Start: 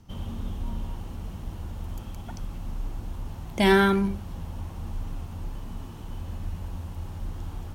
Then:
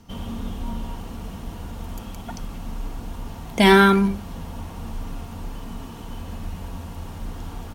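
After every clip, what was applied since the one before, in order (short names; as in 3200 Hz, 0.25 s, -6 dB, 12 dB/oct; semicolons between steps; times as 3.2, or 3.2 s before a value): low shelf 130 Hz -7.5 dB; comb 4.3 ms, depth 32%; gain +6.5 dB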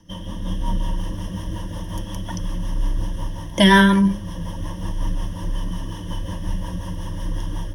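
rotary speaker horn 5.5 Hz; AGC gain up to 5 dB; ripple EQ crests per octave 1.2, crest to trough 16 dB; gain -1 dB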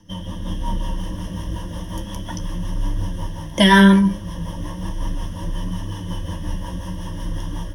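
flange 0.34 Hz, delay 9.9 ms, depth 8.5 ms, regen +53%; gain +5 dB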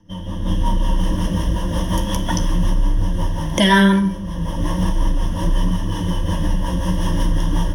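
recorder AGC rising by 15 dB/s; on a send at -11.5 dB: reverb RT60 0.55 s, pre-delay 37 ms; on the sum: mismatched tape noise reduction decoder only; gain -1.5 dB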